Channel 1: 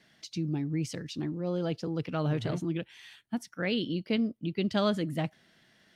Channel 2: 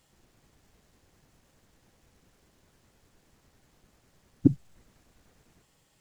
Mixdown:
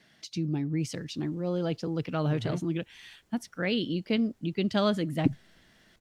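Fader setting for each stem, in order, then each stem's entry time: +1.5 dB, -5.5 dB; 0.00 s, 0.80 s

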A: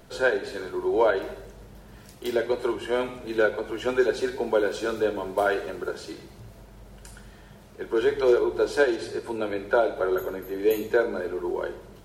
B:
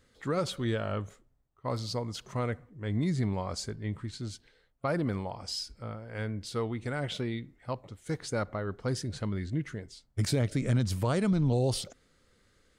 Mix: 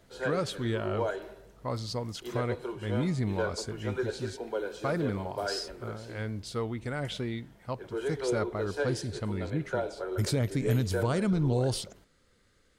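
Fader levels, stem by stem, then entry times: -10.5 dB, -0.5 dB; 0.00 s, 0.00 s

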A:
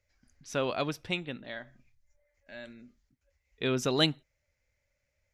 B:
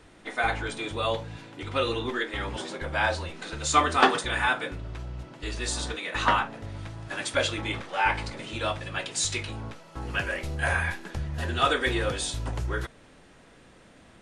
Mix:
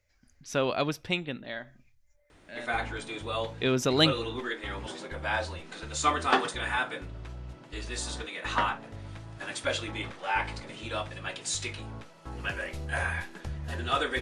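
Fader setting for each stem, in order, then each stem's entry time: +3.0 dB, -4.5 dB; 0.00 s, 2.30 s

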